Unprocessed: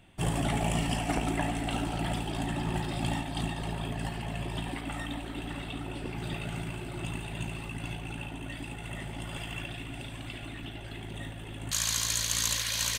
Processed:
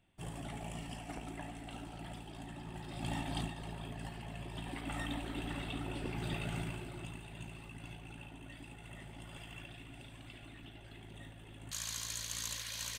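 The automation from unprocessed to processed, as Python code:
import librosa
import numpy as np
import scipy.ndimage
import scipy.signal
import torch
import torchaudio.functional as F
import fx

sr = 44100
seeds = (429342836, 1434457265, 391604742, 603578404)

y = fx.gain(x, sr, db=fx.line((2.76, -15.0), (3.33, -2.5), (3.52, -10.0), (4.52, -10.0), (4.99, -3.0), (6.62, -3.0), (7.17, -11.5)))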